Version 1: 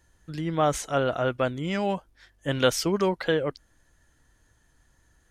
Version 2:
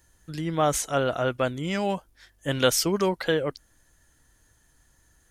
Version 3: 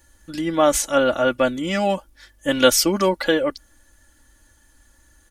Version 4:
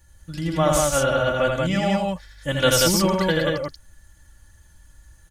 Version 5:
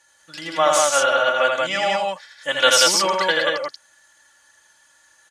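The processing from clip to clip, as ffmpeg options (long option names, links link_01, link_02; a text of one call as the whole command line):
ffmpeg -i in.wav -af "highshelf=frequency=6800:gain=11" out.wav
ffmpeg -i in.wav -af "aecho=1:1:3.5:0.79,volume=4dB" out.wav
ffmpeg -i in.wav -af "lowshelf=frequency=200:width_type=q:width=3:gain=7.5,aecho=1:1:81.63|131.2|183.7:0.708|0.251|0.794,volume=-4dB" out.wav
ffmpeg -i in.wav -af "highpass=700,lowpass=7700,volume=6.5dB" out.wav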